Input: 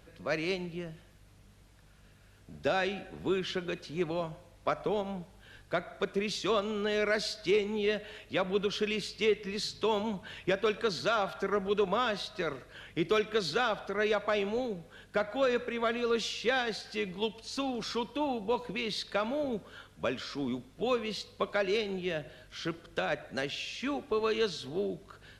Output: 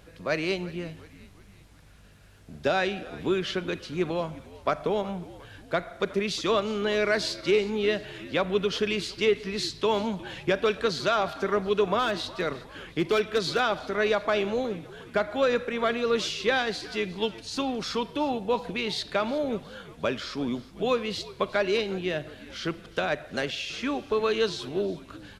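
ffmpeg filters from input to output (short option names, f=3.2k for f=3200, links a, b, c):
-filter_complex "[0:a]asettb=1/sr,asplit=3[a][b][c];[a]atrim=end=11.994[d];[b]atrim=start=11.99:end=13.6,asetpts=PTS-STARTPTS,afade=t=in:d=0.004:c=qsin,afade=t=out:st=1.606:d=0.004:c=qsin,volume=22dB,asoftclip=hard,volume=-22dB[e];[c]atrim=start=13.596[f];[d][e]acrossfade=d=0.004:c1=hsin:c2=qsin[g];[g][f]acrossfade=d=0.004:c1=qsin:c2=hsin,asplit=2[h][i];[i]asplit=4[j][k][l][m];[j]adelay=360,afreqshift=-82,volume=-19dB[n];[k]adelay=720,afreqshift=-164,volume=-25.4dB[o];[l]adelay=1080,afreqshift=-246,volume=-31.8dB[p];[m]adelay=1440,afreqshift=-328,volume=-38.1dB[q];[n][o][p][q]amix=inputs=4:normalize=0[r];[h][r]amix=inputs=2:normalize=0,volume=4.5dB"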